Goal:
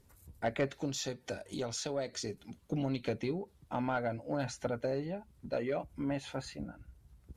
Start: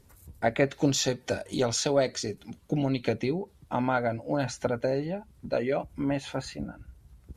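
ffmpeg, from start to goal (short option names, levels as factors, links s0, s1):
-filter_complex "[0:a]asplit=3[s0][s1][s2];[s0]afade=t=out:st=0.77:d=0.02[s3];[s1]acompressor=threshold=0.0178:ratio=1.5,afade=t=in:st=0.77:d=0.02,afade=t=out:st=2.12:d=0.02[s4];[s2]afade=t=in:st=2.12:d=0.02[s5];[s3][s4][s5]amix=inputs=3:normalize=0,asoftclip=type=tanh:threshold=0.158,volume=0.501"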